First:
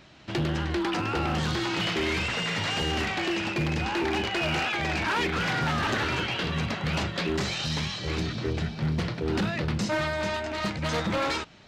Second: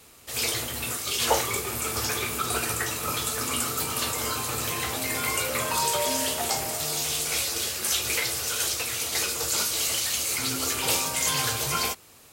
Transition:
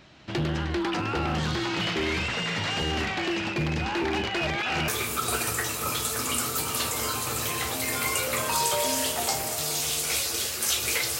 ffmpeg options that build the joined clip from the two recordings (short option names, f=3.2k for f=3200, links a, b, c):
-filter_complex "[0:a]apad=whole_dur=11.19,atrim=end=11.19,asplit=2[a][b];[a]atrim=end=4.472[c];[b]atrim=start=4.468:end=4.882,asetpts=PTS-STARTPTS,areverse[d];[1:a]atrim=start=2.098:end=8.41[e];[c][d]acrossfade=d=0.004:c1=hsin:c2=hsin[f];[f][e]acrossfade=d=0.004:c1=hsin:c2=hsin"